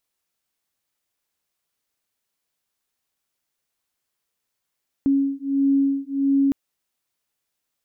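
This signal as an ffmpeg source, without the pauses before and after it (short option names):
-f lavfi -i "aevalsrc='0.0944*(sin(2*PI*275*t)+sin(2*PI*276.5*t))':d=1.46:s=44100"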